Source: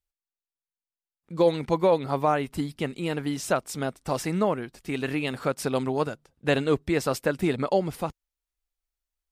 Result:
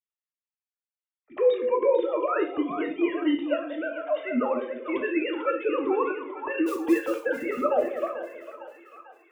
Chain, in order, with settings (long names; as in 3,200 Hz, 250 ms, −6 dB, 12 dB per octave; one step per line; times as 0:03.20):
three sine waves on the formant tracks
low-shelf EQ 210 Hz +3.5 dB
brickwall limiter −18.5 dBFS, peak gain reduction 11 dB
0:06.66–0:07.20: log-companded quantiser 6 bits
echo with a time of its own for lows and highs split 630 Hz, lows 192 ms, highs 447 ms, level −8.5 dB
reverb whose tail is shaped and stops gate 150 ms falling, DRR 3.5 dB
flanger whose copies keep moving one way falling 0.31 Hz
level +6 dB